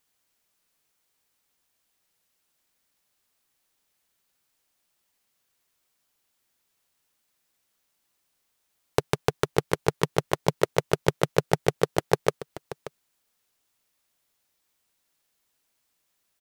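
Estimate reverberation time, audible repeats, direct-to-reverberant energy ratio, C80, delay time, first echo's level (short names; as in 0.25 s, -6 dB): none, 1, none, none, 0.582 s, -15.5 dB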